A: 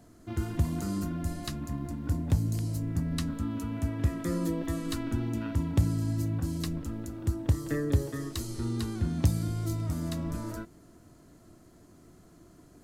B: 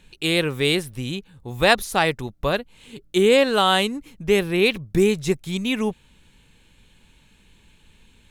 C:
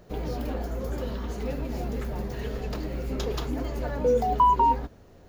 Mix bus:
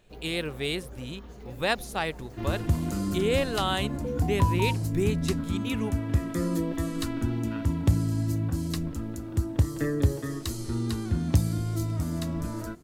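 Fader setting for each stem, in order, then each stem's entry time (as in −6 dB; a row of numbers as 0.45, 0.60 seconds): +2.5, −10.0, −12.5 decibels; 2.10, 0.00, 0.00 seconds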